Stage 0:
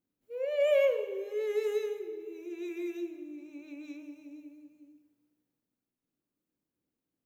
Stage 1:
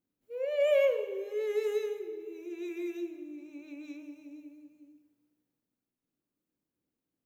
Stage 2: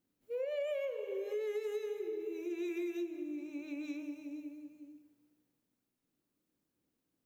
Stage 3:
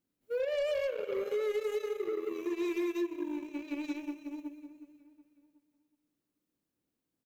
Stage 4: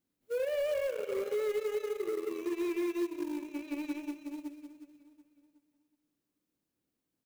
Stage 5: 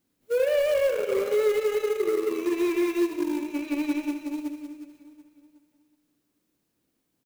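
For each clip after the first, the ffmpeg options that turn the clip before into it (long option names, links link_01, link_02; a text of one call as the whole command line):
ffmpeg -i in.wav -af anull out.wav
ffmpeg -i in.wav -af "acompressor=threshold=-38dB:ratio=12,volume=3.5dB" out.wav
ffmpeg -i in.wav -filter_complex "[0:a]aeval=exprs='0.0376*(cos(1*acos(clip(val(0)/0.0376,-1,1)))-cos(1*PI/2))+0.00266*(cos(5*acos(clip(val(0)/0.0376,-1,1)))-cos(5*PI/2))+0.00473*(cos(7*acos(clip(val(0)/0.0376,-1,1)))-cos(7*PI/2))':channel_layout=same,asplit=2[link_01][link_02];[link_02]adelay=368,lowpass=frequency=3900:poles=1,volume=-18dB,asplit=2[link_03][link_04];[link_04]adelay=368,lowpass=frequency=3900:poles=1,volume=0.51,asplit=2[link_05][link_06];[link_06]adelay=368,lowpass=frequency=3900:poles=1,volume=0.51,asplit=2[link_07][link_08];[link_08]adelay=368,lowpass=frequency=3900:poles=1,volume=0.51[link_09];[link_01][link_03][link_05][link_07][link_09]amix=inputs=5:normalize=0,volume=4dB" out.wav
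ffmpeg -i in.wav -filter_complex "[0:a]acrossover=split=2500[link_01][link_02];[link_01]acrusher=bits=5:mode=log:mix=0:aa=0.000001[link_03];[link_02]alimiter=level_in=24dB:limit=-24dB:level=0:latency=1,volume=-24dB[link_04];[link_03][link_04]amix=inputs=2:normalize=0" out.wav
ffmpeg -i in.wav -af "aecho=1:1:76|152|228|304|380|456:0.299|0.155|0.0807|0.042|0.0218|0.0114,volume=9dB" out.wav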